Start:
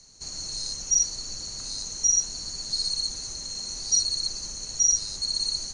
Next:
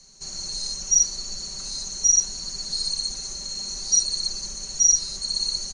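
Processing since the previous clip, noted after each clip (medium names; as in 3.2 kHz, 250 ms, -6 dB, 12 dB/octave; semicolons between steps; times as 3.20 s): comb 5.2 ms, depth 71%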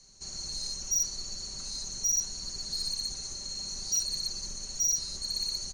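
octave divider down 2 oct, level +3 dB; saturation -17.5 dBFS, distortion -11 dB; trim -5.5 dB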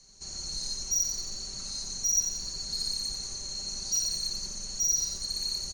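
feedback delay 89 ms, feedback 40%, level -5.5 dB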